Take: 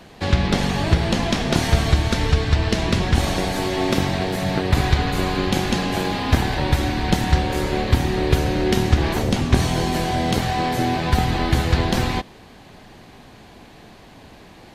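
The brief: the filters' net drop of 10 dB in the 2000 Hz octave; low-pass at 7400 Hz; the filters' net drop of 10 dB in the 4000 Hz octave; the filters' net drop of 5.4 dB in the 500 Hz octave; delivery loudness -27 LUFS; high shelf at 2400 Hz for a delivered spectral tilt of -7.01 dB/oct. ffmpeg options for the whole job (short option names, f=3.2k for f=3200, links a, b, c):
-af "lowpass=7.4k,equalizer=f=500:t=o:g=-7,equalizer=f=2k:t=o:g=-8.5,highshelf=f=2.4k:g=-6,equalizer=f=4k:t=o:g=-4,volume=-4dB"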